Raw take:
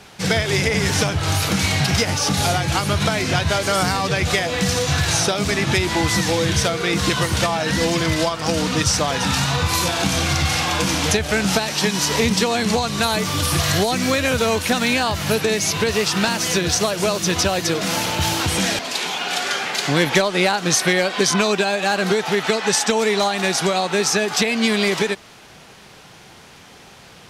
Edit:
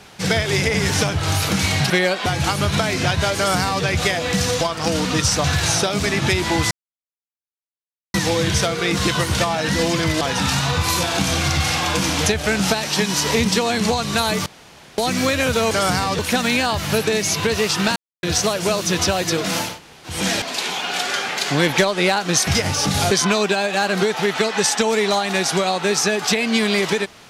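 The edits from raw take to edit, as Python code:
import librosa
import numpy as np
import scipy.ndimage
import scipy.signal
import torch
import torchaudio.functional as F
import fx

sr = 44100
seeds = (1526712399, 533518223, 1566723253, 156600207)

y = fx.edit(x, sr, fx.swap(start_s=1.9, length_s=0.64, other_s=20.84, other_length_s=0.36),
    fx.duplicate(start_s=3.64, length_s=0.48, to_s=14.56),
    fx.insert_silence(at_s=6.16, length_s=1.43),
    fx.move(start_s=8.23, length_s=0.83, to_s=4.89),
    fx.room_tone_fill(start_s=13.31, length_s=0.52),
    fx.silence(start_s=16.33, length_s=0.27),
    fx.room_tone_fill(start_s=18.06, length_s=0.46, crossfade_s=0.24), tone=tone)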